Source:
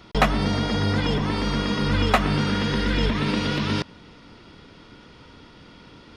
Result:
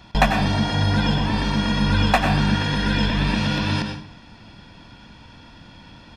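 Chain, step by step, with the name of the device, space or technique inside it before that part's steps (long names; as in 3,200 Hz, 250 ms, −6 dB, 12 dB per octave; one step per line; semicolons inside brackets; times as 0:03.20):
microphone above a desk (comb filter 1.2 ms, depth 61%; convolution reverb RT60 0.55 s, pre-delay 85 ms, DRR 4.5 dB)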